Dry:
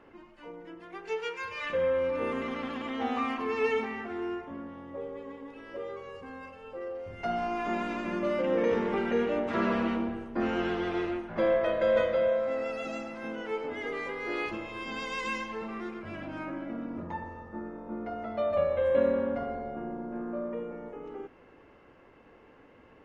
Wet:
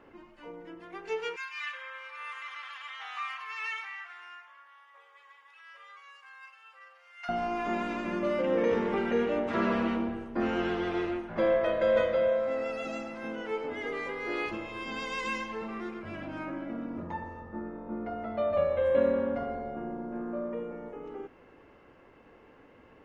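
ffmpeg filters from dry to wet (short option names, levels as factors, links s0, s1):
-filter_complex "[0:a]asettb=1/sr,asplit=3[s0][s1][s2];[s0]atrim=end=1.364[s3];[s1]atrim=start=1.36:end=7.29,asetpts=PTS-STARTPTS,afade=t=in:d=0.004:c=qsin,afade=t=out:st=5.926:d=0.004:c=qsin,highpass=f=1200:w=0.5412,highpass=f=1200:w=1.3066[s4];[s2]atrim=start=7.286[s5];[s3][s4]acrossfade=d=0.004:c1=hsin:c2=qsin[s6];[s6][s5]acrossfade=d=0.004:c1=qsin:c2=hsin,asettb=1/sr,asplit=3[s7][s8][s9];[s7]atrim=end=17.414[s10];[s8]atrim=start=17.41:end=18.55,asetpts=PTS-STARTPTS,afade=t=in:d=0.004:c=qsin,afade=t=out:st=1.136:d=0.004:c=qsin,bass=f=250:g=2,treble=f=4000:g=-6[s11];[s9]atrim=start=18.546[s12];[s10][s11]acrossfade=d=0.004:c1=hsin:c2=qsin[s13];[s13][s12]acrossfade=d=0.004:c1=qsin:c2=hsin"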